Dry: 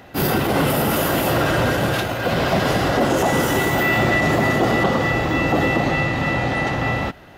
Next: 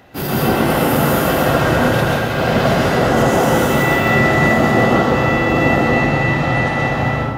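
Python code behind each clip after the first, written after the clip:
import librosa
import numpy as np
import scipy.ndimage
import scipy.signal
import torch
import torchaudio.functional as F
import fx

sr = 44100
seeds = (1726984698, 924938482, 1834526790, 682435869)

y = fx.rev_plate(x, sr, seeds[0], rt60_s=1.7, hf_ratio=0.45, predelay_ms=105, drr_db=-5.5)
y = y * librosa.db_to_amplitude(-3.0)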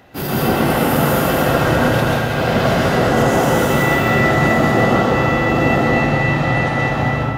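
y = x + 10.0 ** (-11.0 / 20.0) * np.pad(x, (int(207 * sr / 1000.0), 0))[:len(x)]
y = y * librosa.db_to_amplitude(-1.0)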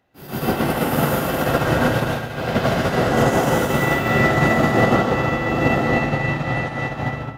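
y = fx.upward_expand(x, sr, threshold_db=-25.0, expansion=2.5)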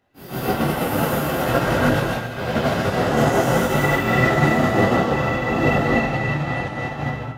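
y = fx.detune_double(x, sr, cents=18)
y = y * librosa.db_to_amplitude(3.0)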